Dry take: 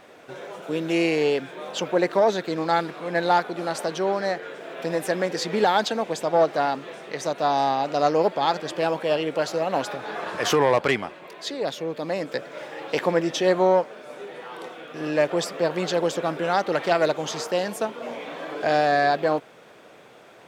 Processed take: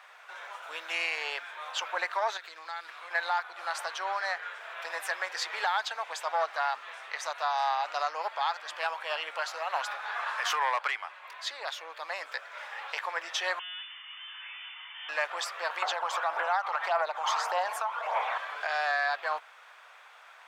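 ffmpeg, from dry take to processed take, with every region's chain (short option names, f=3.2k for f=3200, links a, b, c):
-filter_complex "[0:a]asettb=1/sr,asplit=3[a][b][c];[a]atrim=end=2.374[d];[b]atrim=start=2.37:end=3.11,asetpts=PTS-STARTPTS,afade=t=in:d=0.004:c=qsin,afade=t=out:st=0.736:d=0.004:c=qsin,equalizer=f=870:t=o:w=2:g=-6.5,acompressor=threshold=-31dB:ratio=4:attack=3.2:release=140:knee=1:detection=peak[e];[c]atrim=start=3.106[f];[d][e]acrossfade=d=0.004:c1=hsin:c2=qsin[g];[g][f]acrossfade=d=0.004:c1=qsin:c2=hsin,asettb=1/sr,asplit=3[h][i][j];[h]atrim=end=13.594[k];[i]atrim=start=13.59:end=15.09,asetpts=PTS-STARTPTS,afade=t=in:d=0.004:c=qsin,afade=t=out:st=1.496:d=0.004:c=qsin,highpass=f=390:w=0.5412,highpass=f=390:w=1.3066,aeval=exprs='(tanh(89.1*val(0)+0.55)-tanh(0.55))/89.1':c=same,lowpass=f=3k:t=q:w=0.5098,lowpass=f=3k:t=q:w=0.6013,lowpass=f=3k:t=q:w=0.9,lowpass=f=3k:t=q:w=2.563,afreqshift=-3500[l];[j]atrim=start=15.086[m];[k][l]acrossfade=d=0.004:c1=hsin:c2=qsin[n];[n][m]acrossfade=d=0.004:c1=qsin:c2=hsin,asettb=1/sr,asplit=3[o][p][q];[o]atrim=end=15.824[r];[p]atrim=start=15.82:end=18.38,asetpts=PTS-STARTPTS,afade=t=in:d=0.004:c=qsin,afade=t=out:st=2.556:d=0.004:c=qsin,equalizer=f=790:w=0.84:g=15,acompressor=threshold=-19dB:ratio=2.5:attack=3.2:release=140:knee=1:detection=peak,aphaser=in_gain=1:out_gain=1:delay=1:decay=0.42:speed=1.7:type=triangular[s];[q]atrim=start=18.376[t];[r][s]acrossfade=d=0.004:c1=hsin:c2=qsin[u];[u][t]acrossfade=d=0.004:c1=qsin:c2=hsin,highpass=f=1k:w=0.5412,highpass=f=1k:w=1.3066,highshelf=f=2.6k:g=-10.5,alimiter=limit=-23dB:level=0:latency=1:release=412,volume=4.5dB"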